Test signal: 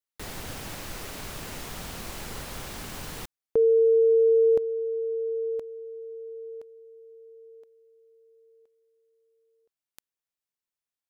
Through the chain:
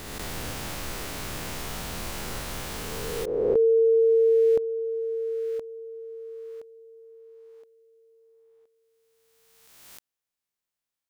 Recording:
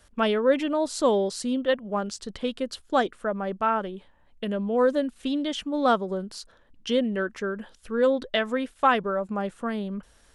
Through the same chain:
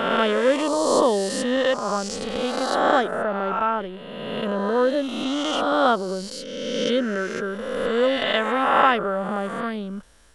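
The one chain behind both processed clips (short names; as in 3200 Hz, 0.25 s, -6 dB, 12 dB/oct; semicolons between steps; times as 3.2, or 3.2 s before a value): spectral swells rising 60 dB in 1.81 s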